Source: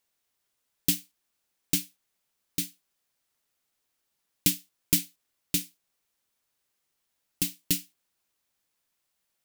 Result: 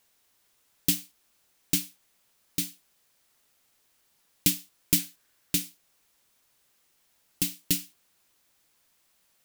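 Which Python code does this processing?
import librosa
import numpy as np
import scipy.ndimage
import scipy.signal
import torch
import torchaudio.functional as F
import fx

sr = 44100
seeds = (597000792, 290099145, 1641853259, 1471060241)

y = fx.law_mismatch(x, sr, coded='mu')
y = fx.peak_eq(y, sr, hz=1600.0, db=6.0, octaves=0.34, at=(4.99, 5.55))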